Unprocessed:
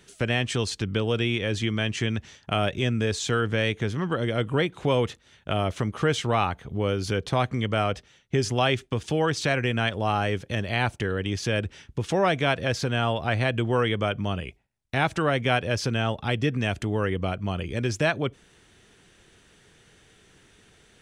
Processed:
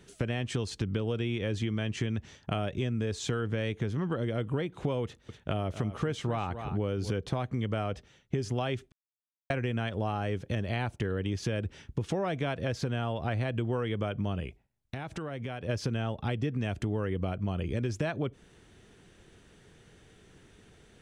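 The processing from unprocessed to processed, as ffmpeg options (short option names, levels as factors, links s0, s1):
-filter_complex "[0:a]asettb=1/sr,asplit=3[s0][s1][s2];[s0]atrim=end=5.044[s3];[s1]atrim=start=5.04:end=7.12,asetpts=PTS-STARTPTS,afade=t=in:d=0.004:c=qsin,afade=t=out:st=2.076:d=0.004:c=qsin,aecho=1:1:247:0.188,atrim=end_sample=91728[s4];[s2]atrim=start=7.116[s5];[s3][s4]acrossfade=d=0.004:c1=hsin:c2=qsin[s6];[s6][s5]acrossfade=d=0.004:c1=qsin:c2=hsin,asplit=3[s7][s8][s9];[s7]afade=t=out:st=14.46:d=0.02[s10];[s8]acompressor=threshold=0.02:ratio=6:attack=3.2:release=140:knee=1:detection=peak,afade=t=in:st=14.46:d=0.02,afade=t=out:st=15.68:d=0.02[s11];[s9]afade=t=in:st=15.68:d=0.02[s12];[s10][s11][s12]amix=inputs=3:normalize=0,asplit=3[s13][s14][s15];[s13]atrim=end=8.92,asetpts=PTS-STARTPTS,afade=t=out:st=8.916:d=0.004:c=hsin[s16];[s14]atrim=start=8.92:end=9.5,asetpts=PTS-STARTPTS,volume=0[s17];[s15]atrim=start=9.5,asetpts=PTS-STARTPTS,afade=t=in:d=0.004:c=hsin[s18];[s16][s17][s18]concat=n=3:v=0:a=1,tiltshelf=f=870:g=4,acompressor=threshold=0.0501:ratio=6,volume=0.841"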